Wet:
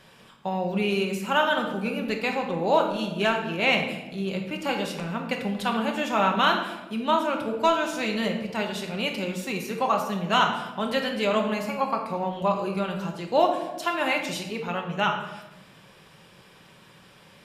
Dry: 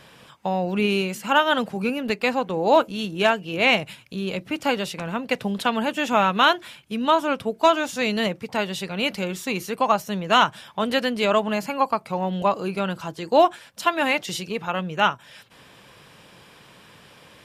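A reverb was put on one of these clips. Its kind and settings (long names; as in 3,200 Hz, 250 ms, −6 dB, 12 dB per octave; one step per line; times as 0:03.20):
rectangular room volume 510 cubic metres, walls mixed, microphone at 1.1 metres
level −5.5 dB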